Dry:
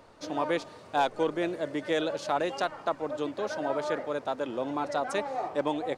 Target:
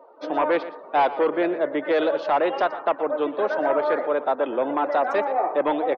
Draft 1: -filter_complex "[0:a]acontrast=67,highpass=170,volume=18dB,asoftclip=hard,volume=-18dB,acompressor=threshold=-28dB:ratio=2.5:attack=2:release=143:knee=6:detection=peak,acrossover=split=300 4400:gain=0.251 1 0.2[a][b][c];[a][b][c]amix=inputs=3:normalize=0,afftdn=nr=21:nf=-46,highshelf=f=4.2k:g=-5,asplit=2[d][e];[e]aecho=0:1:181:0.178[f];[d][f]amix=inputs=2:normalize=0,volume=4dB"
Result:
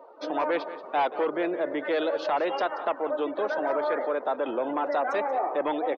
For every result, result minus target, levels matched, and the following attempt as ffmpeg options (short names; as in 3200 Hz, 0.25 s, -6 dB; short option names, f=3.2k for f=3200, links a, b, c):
echo 62 ms late; 8000 Hz band +7.0 dB; compressor: peak gain reduction +6 dB
-filter_complex "[0:a]acontrast=67,highpass=170,volume=18dB,asoftclip=hard,volume=-18dB,acompressor=threshold=-28dB:ratio=2.5:attack=2:release=143:knee=6:detection=peak,acrossover=split=300 4400:gain=0.251 1 0.2[a][b][c];[a][b][c]amix=inputs=3:normalize=0,afftdn=nr=21:nf=-46,highshelf=f=4.2k:g=-5,asplit=2[d][e];[e]aecho=0:1:119:0.178[f];[d][f]amix=inputs=2:normalize=0,volume=4dB"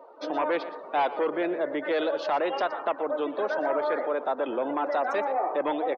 8000 Hz band +7.0 dB; compressor: peak gain reduction +6 dB
-filter_complex "[0:a]acontrast=67,highpass=170,volume=18dB,asoftclip=hard,volume=-18dB,acompressor=threshold=-28dB:ratio=2.5:attack=2:release=143:knee=6:detection=peak,acrossover=split=300 4400:gain=0.251 1 0.2[a][b][c];[a][b][c]amix=inputs=3:normalize=0,afftdn=nr=21:nf=-46,highshelf=f=4.2k:g=-15,asplit=2[d][e];[e]aecho=0:1:119:0.178[f];[d][f]amix=inputs=2:normalize=0,volume=4dB"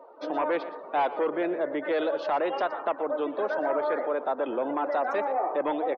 compressor: peak gain reduction +6 dB
-filter_complex "[0:a]acontrast=67,highpass=170,volume=18dB,asoftclip=hard,volume=-18dB,acrossover=split=300 4400:gain=0.251 1 0.2[a][b][c];[a][b][c]amix=inputs=3:normalize=0,afftdn=nr=21:nf=-46,highshelf=f=4.2k:g=-15,asplit=2[d][e];[e]aecho=0:1:119:0.178[f];[d][f]amix=inputs=2:normalize=0,volume=4dB"